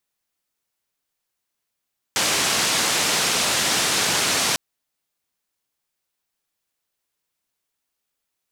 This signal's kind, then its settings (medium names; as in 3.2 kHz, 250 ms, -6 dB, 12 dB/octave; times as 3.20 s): noise band 120–7300 Hz, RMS -21 dBFS 2.40 s